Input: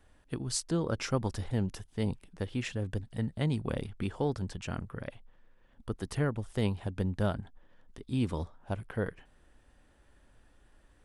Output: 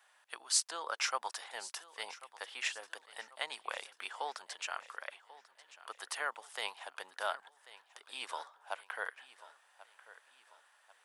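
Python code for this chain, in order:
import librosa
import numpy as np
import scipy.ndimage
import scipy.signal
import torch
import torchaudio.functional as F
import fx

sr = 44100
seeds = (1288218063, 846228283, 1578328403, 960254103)

p1 = scipy.signal.sosfilt(scipy.signal.butter(4, 800.0, 'highpass', fs=sr, output='sos'), x)
p2 = p1 + fx.echo_feedback(p1, sr, ms=1090, feedback_pct=43, wet_db=-17.5, dry=0)
y = p2 * 10.0 ** (4.0 / 20.0)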